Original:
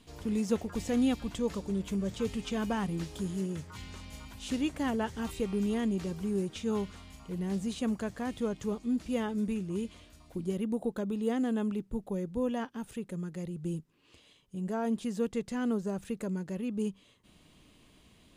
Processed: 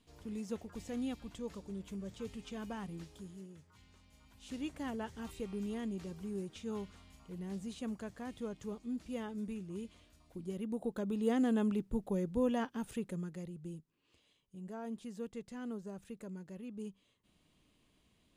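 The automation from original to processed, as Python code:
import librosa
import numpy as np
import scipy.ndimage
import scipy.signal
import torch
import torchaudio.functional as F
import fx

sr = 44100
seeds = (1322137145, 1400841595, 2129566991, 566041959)

y = fx.gain(x, sr, db=fx.line((2.95, -11.0), (3.58, -18.5), (4.15, -18.5), (4.64, -9.0), (10.41, -9.0), (11.38, -0.5), (13.02, -0.5), (13.77, -11.5)))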